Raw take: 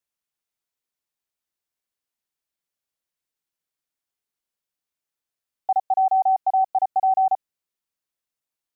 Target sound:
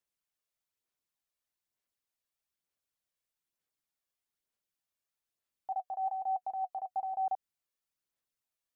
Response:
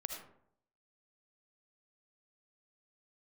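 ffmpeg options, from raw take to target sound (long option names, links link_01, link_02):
-filter_complex "[0:a]asettb=1/sr,asplit=3[link_01][link_02][link_03];[link_01]atrim=end=5.724[link_04];[link_02]atrim=start=5.72:end=7.28,asetpts=PTS-STARTPTS,afade=type=in:duration=0.004:curve=qsin,afade=type=out:start_time=1.556:duration=0.004:curve=qsin,bandreject=frequency=740:width=16[link_05];[link_03]atrim=start=7.276[link_06];[link_04][link_05]acrossfade=duration=0.004:curve1=hsin:curve2=qsin[link_07];[link_07][link_06]acrossfade=duration=0.004:curve1=qsin:curve2=hsin,alimiter=level_in=2.5dB:limit=-24dB:level=0:latency=1:release=109,volume=-2.5dB,aphaser=in_gain=1:out_gain=1:delay=1.8:decay=0.33:speed=1.1:type=sinusoidal,volume=-4dB"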